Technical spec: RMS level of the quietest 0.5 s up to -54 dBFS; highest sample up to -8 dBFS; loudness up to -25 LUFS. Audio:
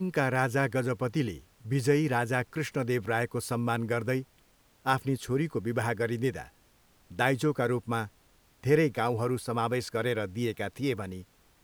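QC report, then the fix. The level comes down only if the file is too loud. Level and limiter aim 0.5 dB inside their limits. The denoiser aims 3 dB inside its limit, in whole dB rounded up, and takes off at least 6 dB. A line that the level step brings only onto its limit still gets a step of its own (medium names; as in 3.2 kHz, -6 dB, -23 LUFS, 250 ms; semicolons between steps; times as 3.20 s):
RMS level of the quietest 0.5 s -64 dBFS: pass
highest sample -10.0 dBFS: pass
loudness -30.0 LUFS: pass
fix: none needed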